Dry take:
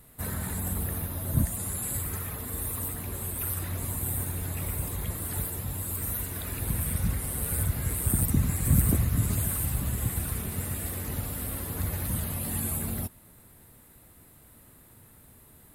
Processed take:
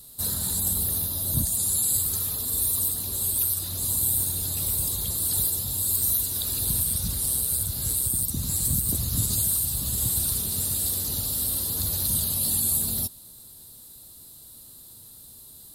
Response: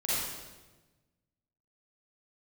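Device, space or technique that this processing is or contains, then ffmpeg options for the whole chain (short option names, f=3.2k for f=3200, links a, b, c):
over-bright horn tweeter: -af "highshelf=f=3k:t=q:w=3:g=12,alimiter=limit=-9.5dB:level=0:latency=1:release=392,volume=-2dB"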